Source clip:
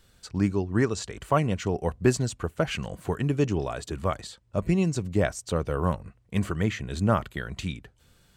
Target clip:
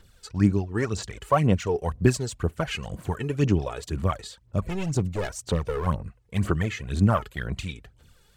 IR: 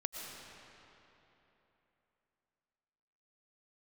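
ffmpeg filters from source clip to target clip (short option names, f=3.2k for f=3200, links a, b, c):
-filter_complex "[0:a]asettb=1/sr,asplit=3[a][b][c];[a]atrim=end=4.634[d];[b]atrim=start=4.63:end=5.87,asetpts=PTS-STARTPTS,afade=t=in:d=0.004:c=qsin,afade=t=out:st=1.236:d=0.004:c=qsin,volume=23.5dB,asoftclip=hard,volume=-23.5dB[e];[c]atrim=start=5.866[f];[d][e]acrossfade=d=0.004:c1=hsin:c2=qsin[g];[g][f]acrossfade=d=0.004:c1=qsin:c2=hsin,aphaser=in_gain=1:out_gain=1:delay=2.4:decay=0.63:speed=2:type=sinusoidal,volume=-1.5dB"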